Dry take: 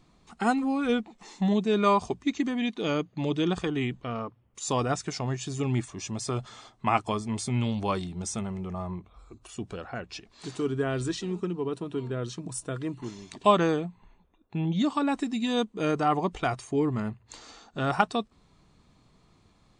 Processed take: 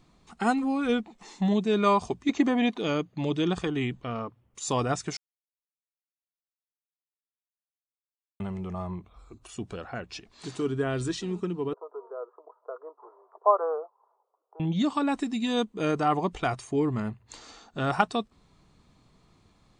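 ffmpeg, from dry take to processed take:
-filter_complex "[0:a]asettb=1/sr,asplit=3[s0][s1][s2];[s0]atrim=end=2.294[s3];[s1]atrim=start=2.29:end=2.78,asetpts=PTS-STARTPTS,afade=t=in:d=0.004:c=qsin,afade=t=out:st=0.486:d=0.004:c=qsin,equalizer=f=700:t=o:w=2.2:g=11.5[s4];[s2]atrim=start=2.776[s5];[s3][s4]acrossfade=d=0.004:c1=hsin:c2=qsin[s6];[s6][s5]acrossfade=d=0.004:c1=qsin:c2=hsin,asettb=1/sr,asplit=3[s7][s8][s9];[s7]atrim=end=11.734[s10];[s8]atrim=start=11.73:end=14.6,asetpts=PTS-STARTPTS,afade=t=in:d=0.004:c=qsin,afade=t=out:st=2.866:d=0.004:c=qsin,asuperpass=centerf=750:order=12:qfactor=0.87[s11];[s9]atrim=start=14.596[s12];[s10][s11]acrossfade=d=0.004:c1=hsin:c2=qsin[s13];[s13][s12]acrossfade=d=0.004:c1=qsin:c2=hsin,asplit=3[s14][s15][s16];[s14]atrim=end=5.17,asetpts=PTS-STARTPTS,afade=t=out:st=5.166:d=0.004:c=hsin[s17];[s15]atrim=start=5.17:end=8.4,asetpts=PTS-STARTPTS,volume=0[s18];[s16]atrim=start=8.4,asetpts=PTS-STARTPTS,afade=t=in:d=0.004:c=hsin[s19];[s17][s18][s19]concat=n=3:v=0:a=1"

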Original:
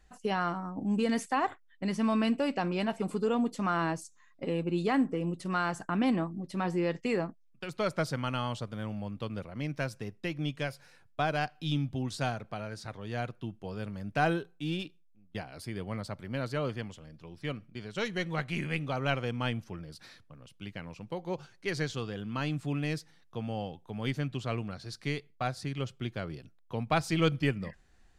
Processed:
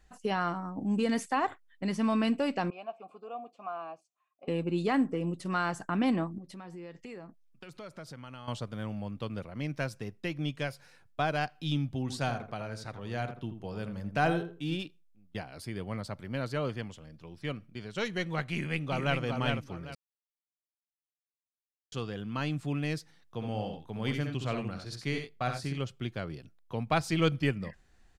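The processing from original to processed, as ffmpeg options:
-filter_complex "[0:a]asettb=1/sr,asplit=3[s0][s1][s2];[s0]atrim=end=2.704[s3];[s1]atrim=start=2.7:end=4.48,asetpts=PTS-STARTPTS,afade=t=in:d=0.004:c=qsin,afade=t=out:st=1.776:d=0.004:c=qsin,asplit=3[s4][s5][s6];[s4]bandpass=f=730:t=q:w=8,volume=1[s7];[s5]bandpass=f=1090:t=q:w=8,volume=0.501[s8];[s6]bandpass=f=2440:t=q:w=8,volume=0.355[s9];[s7][s8][s9]amix=inputs=3:normalize=0[s10];[s2]atrim=start=4.476[s11];[s3][s10]acrossfade=d=0.004:c1=hsin:c2=qsin[s12];[s12][s11]acrossfade=d=0.004:c1=qsin:c2=hsin,asettb=1/sr,asplit=3[s13][s14][s15];[s13]atrim=end=6.384[s16];[s14]atrim=start=6.38:end=8.48,asetpts=PTS-STARTPTS,afade=t=in:d=0.004:c=qsin,afade=t=out:st=2.096:d=0.004:c=qsin,acompressor=threshold=0.00501:ratio=3:attack=3.2:release=140:knee=1:detection=peak[s17];[s15]atrim=start=8.476[s18];[s16][s17]acrossfade=d=0.004:c1=hsin:c2=qsin[s19];[s19][s18]acrossfade=d=0.004:c1=qsin:c2=hsin,asplit=3[s20][s21][s22];[s20]afade=t=out:st=12.08:d=0.02[s23];[s21]asplit=2[s24][s25];[s25]adelay=82,lowpass=f=1500:p=1,volume=0.398,asplit=2[s26][s27];[s27]adelay=82,lowpass=f=1500:p=1,volume=0.25,asplit=2[s28][s29];[s29]adelay=82,lowpass=f=1500:p=1,volume=0.25[s30];[s24][s26][s28][s30]amix=inputs=4:normalize=0,afade=t=in:st=12.08:d=0.02,afade=t=out:st=14.75:d=0.02[s31];[s22]afade=t=in:st=14.75:d=0.02[s32];[s23][s31][s32]amix=inputs=3:normalize=0,asplit=2[s33][s34];[s34]afade=t=in:st=18.51:d=0.01,afade=t=out:st=19.2:d=0.01,aecho=0:1:400|800|1200:0.630957|0.157739|0.0394348[s35];[s33][s35]amix=inputs=2:normalize=0,asplit=3[s36][s37][s38];[s36]afade=t=out:st=23.39:d=0.02[s39];[s37]aecho=1:1:65|90:0.501|0.299,afade=t=in:st=23.39:d=0.02,afade=t=out:st=25.76:d=0.02[s40];[s38]afade=t=in:st=25.76:d=0.02[s41];[s39][s40][s41]amix=inputs=3:normalize=0,asplit=3[s42][s43][s44];[s42]atrim=end=19.95,asetpts=PTS-STARTPTS,afade=t=out:st=19.946:d=0.004:c=hsin[s45];[s43]atrim=start=19.95:end=21.92,asetpts=PTS-STARTPTS,volume=0[s46];[s44]atrim=start=21.92,asetpts=PTS-STARTPTS,afade=t=in:d=0.004:c=hsin[s47];[s45][s46][s47]concat=n=3:v=0:a=1"

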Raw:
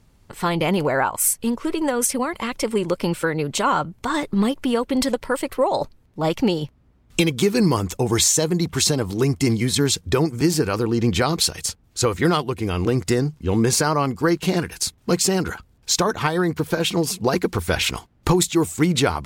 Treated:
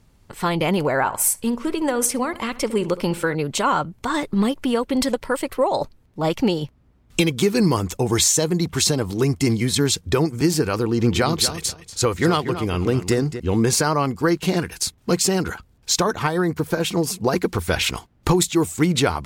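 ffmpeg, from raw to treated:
-filter_complex "[0:a]asettb=1/sr,asplit=3[s0][s1][s2];[s0]atrim=end=0.954[s3];[s1]atrim=start=0.95:end=3.35,asetpts=PTS-STARTPTS,afade=t=in:d=0.004:c=qsin,afade=t=out:st=2.396:d=0.004:c=qsin,asplit=2[s4][s5];[s5]adelay=67,lowpass=f=2300:p=1,volume=0.158,asplit=2[s6][s7];[s7]adelay=67,lowpass=f=2300:p=1,volume=0.45,asplit=2[s8][s9];[s9]adelay=67,lowpass=f=2300:p=1,volume=0.45,asplit=2[s10][s11];[s11]adelay=67,lowpass=f=2300:p=1,volume=0.45[s12];[s4][s6][s8][s10][s12]amix=inputs=5:normalize=0,atrim=end_sample=105840[s13];[s2]atrim=start=3.346[s14];[s3][s13]acrossfade=d=0.004:c1=hsin:c2=qsin[s15];[s15][s14]acrossfade=d=0.004:c1=qsin:c2=hsin,asettb=1/sr,asplit=3[s16][s17][s18];[s16]atrim=end=10.764[s19];[s17]atrim=start=10.76:end=13.4,asetpts=PTS-STARTPTS,afade=t=in:d=0.004:c=qsin,afade=t=out:st=2.636:d=0.004:c=qsin,asplit=2[s20][s21];[s21]adelay=238,lowpass=f=4600:p=1,volume=0.299,asplit=2[s22][s23];[s23]adelay=238,lowpass=f=4600:p=1,volume=0.17[s24];[s20][s22][s24]amix=inputs=3:normalize=0,atrim=end_sample=116424[s25];[s18]atrim=start=13.396[s26];[s19][s25]acrossfade=d=0.004:c1=hsin:c2=qsin[s27];[s27][s26]acrossfade=d=0.004:c1=qsin:c2=hsin,asettb=1/sr,asplit=3[s28][s29][s30];[s28]atrim=end=16.194[s31];[s29]atrim=start=16.19:end=17.36,asetpts=PTS-STARTPTS,afade=t=in:d=0.004:c=qsin,afade=t=out:st=1.166:d=0.004:c=qsin,equalizer=f=3300:w=1.2:g=-4[s32];[s30]atrim=start=17.356[s33];[s31][s32]acrossfade=d=0.004:c1=hsin:c2=qsin[s34];[s34][s33]acrossfade=d=0.004:c1=qsin:c2=hsin"

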